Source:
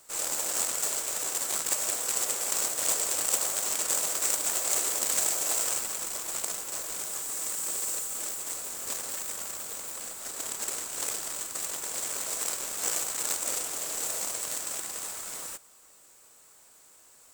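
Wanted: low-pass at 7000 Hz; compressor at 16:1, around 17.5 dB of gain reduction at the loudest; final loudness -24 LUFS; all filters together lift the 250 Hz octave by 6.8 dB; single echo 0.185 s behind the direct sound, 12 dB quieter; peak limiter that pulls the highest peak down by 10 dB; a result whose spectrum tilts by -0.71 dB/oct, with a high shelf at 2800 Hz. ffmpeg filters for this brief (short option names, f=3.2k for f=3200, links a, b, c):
-af "lowpass=7k,equalizer=f=250:t=o:g=9,highshelf=f=2.8k:g=9,acompressor=threshold=-37dB:ratio=16,alimiter=level_in=8.5dB:limit=-24dB:level=0:latency=1,volume=-8.5dB,aecho=1:1:185:0.251,volume=17.5dB"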